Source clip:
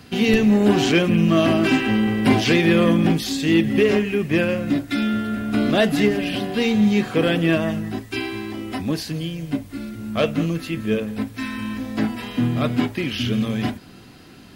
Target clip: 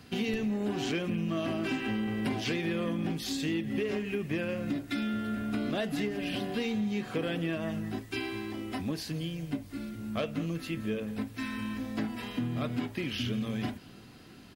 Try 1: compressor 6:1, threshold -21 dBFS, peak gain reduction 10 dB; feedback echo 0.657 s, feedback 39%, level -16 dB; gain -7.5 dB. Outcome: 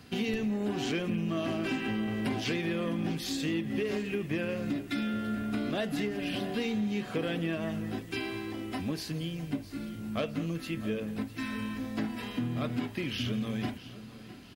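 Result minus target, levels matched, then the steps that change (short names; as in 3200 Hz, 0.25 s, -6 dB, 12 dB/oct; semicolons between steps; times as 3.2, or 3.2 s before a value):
echo-to-direct +12 dB
change: feedback echo 0.657 s, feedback 39%, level -28 dB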